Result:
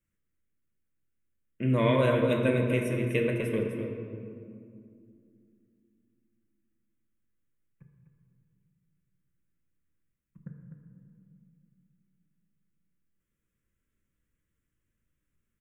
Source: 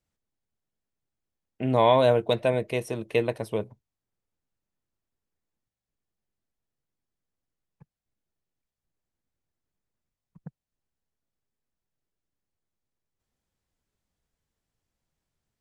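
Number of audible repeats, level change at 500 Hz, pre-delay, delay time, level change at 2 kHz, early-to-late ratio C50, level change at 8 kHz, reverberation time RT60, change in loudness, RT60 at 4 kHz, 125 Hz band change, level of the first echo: 1, −4.0 dB, 3 ms, 251 ms, +1.5 dB, 2.5 dB, −1.5 dB, 2.4 s, −3.0 dB, 1.3 s, +3.5 dB, −8.0 dB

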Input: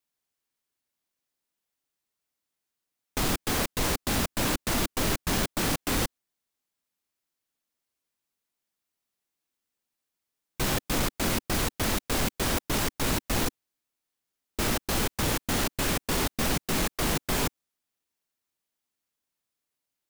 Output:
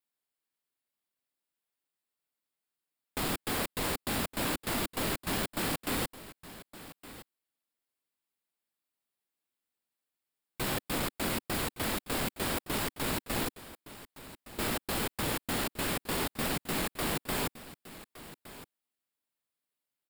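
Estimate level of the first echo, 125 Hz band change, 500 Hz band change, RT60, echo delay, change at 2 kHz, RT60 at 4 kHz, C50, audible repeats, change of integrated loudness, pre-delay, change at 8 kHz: −16.0 dB, −7.0 dB, −4.0 dB, no reverb audible, 1,165 ms, −4.0 dB, no reverb audible, no reverb audible, 1, −5.0 dB, no reverb audible, −6.5 dB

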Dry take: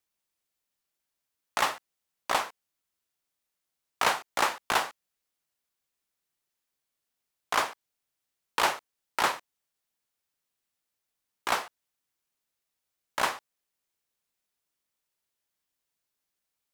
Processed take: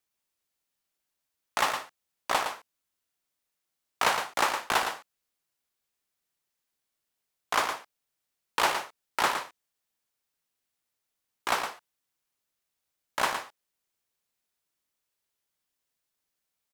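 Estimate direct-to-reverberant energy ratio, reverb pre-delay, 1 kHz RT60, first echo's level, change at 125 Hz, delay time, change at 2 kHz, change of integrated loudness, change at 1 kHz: no reverb audible, no reverb audible, no reverb audible, −7.5 dB, +0.5 dB, 113 ms, +0.5 dB, +0.5 dB, +0.5 dB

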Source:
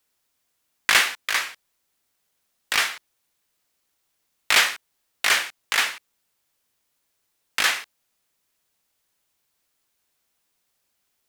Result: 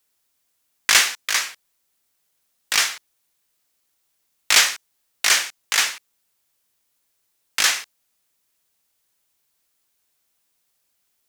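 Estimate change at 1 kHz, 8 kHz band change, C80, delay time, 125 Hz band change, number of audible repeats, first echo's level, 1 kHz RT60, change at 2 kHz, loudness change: −0.5 dB, +8.0 dB, no reverb audible, no echo audible, can't be measured, no echo audible, no echo audible, no reverb audible, 0.0 dB, +2.5 dB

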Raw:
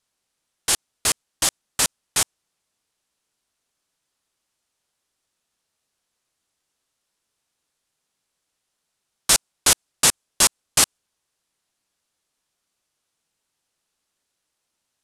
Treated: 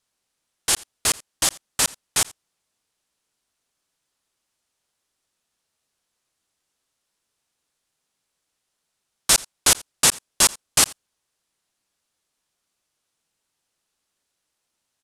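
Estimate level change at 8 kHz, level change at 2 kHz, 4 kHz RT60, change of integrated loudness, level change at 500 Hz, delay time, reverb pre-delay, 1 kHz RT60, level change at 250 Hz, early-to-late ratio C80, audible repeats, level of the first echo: 0.0 dB, 0.0 dB, no reverb audible, 0.0 dB, 0.0 dB, 85 ms, no reverb audible, no reverb audible, 0.0 dB, no reverb audible, 1, −23.0 dB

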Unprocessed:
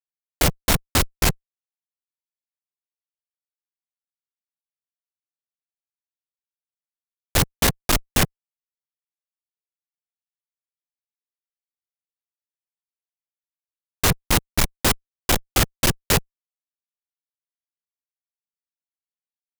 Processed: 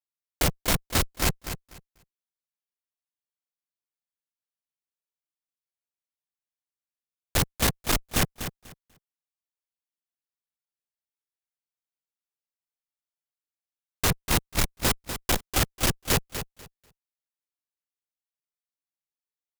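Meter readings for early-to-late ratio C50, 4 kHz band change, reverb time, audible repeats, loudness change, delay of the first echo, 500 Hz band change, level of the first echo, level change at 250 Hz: no reverb audible, −4.5 dB, no reverb audible, 2, −5.0 dB, 245 ms, −4.5 dB, −10.0 dB, −4.5 dB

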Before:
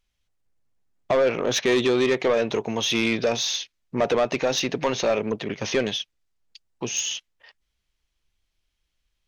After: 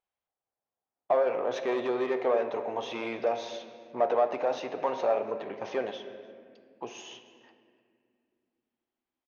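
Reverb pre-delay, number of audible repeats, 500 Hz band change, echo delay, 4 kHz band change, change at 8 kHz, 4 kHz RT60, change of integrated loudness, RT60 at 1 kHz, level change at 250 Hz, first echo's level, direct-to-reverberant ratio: 3 ms, 1, −5.0 dB, 297 ms, −18.0 dB, below −20 dB, 1.3 s, −6.0 dB, 1.9 s, −11.5 dB, −21.5 dB, 7.0 dB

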